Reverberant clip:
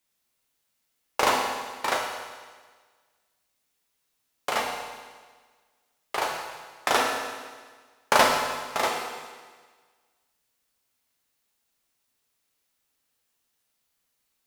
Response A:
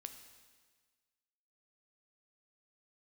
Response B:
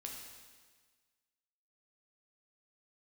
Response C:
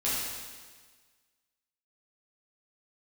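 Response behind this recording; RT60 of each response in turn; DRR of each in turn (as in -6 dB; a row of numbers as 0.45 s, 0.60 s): B; 1.5 s, 1.5 s, 1.5 s; 7.0 dB, -0.5 dB, -9.5 dB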